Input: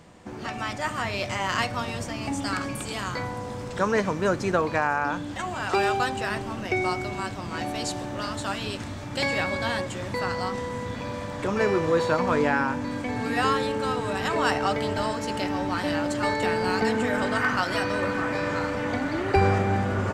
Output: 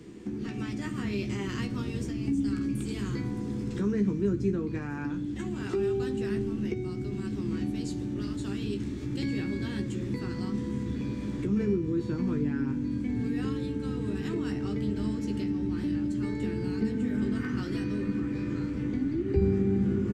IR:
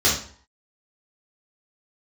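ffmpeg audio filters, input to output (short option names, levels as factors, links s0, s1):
-filter_complex "[0:a]firequalizer=gain_entry='entry(110,0);entry(340,14);entry(590,-14);entry(2000,-3)':delay=0.05:min_phase=1,acrossover=split=190[s0][s1];[s1]acompressor=threshold=0.0141:ratio=4[s2];[s0][s2]amix=inputs=2:normalize=0,asplit=2[s3][s4];[s4]adelay=15,volume=0.447[s5];[s3][s5]amix=inputs=2:normalize=0,asplit=2[s6][s7];[1:a]atrim=start_sample=2205[s8];[s7][s8]afir=irnorm=-1:irlink=0,volume=0.0316[s9];[s6][s9]amix=inputs=2:normalize=0"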